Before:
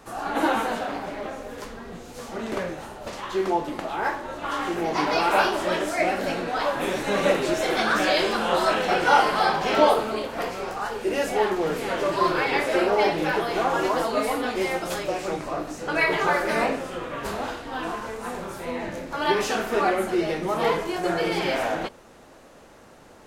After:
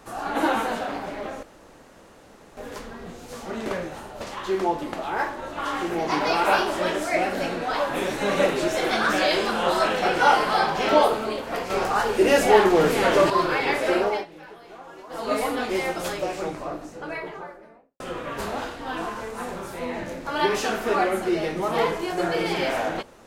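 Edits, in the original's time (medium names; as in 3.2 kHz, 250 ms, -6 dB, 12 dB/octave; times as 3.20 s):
1.43 s: insert room tone 1.14 s
10.56–12.16 s: gain +7 dB
12.88–14.19 s: dip -19.5 dB, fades 0.24 s
14.94–16.86 s: studio fade out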